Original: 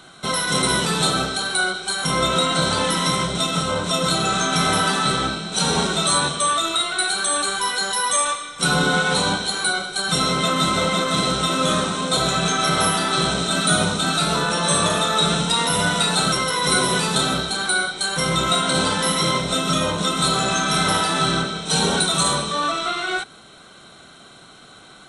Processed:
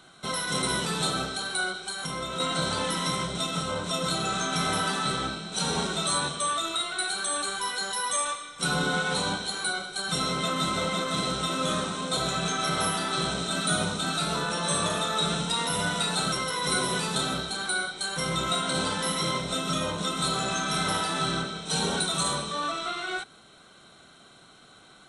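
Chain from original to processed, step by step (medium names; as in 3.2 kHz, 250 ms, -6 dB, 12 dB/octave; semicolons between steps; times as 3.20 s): 1.86–2.40 s: compression, threshold -22 dBFS, peak gain reduction 7 dB; trim -8 dB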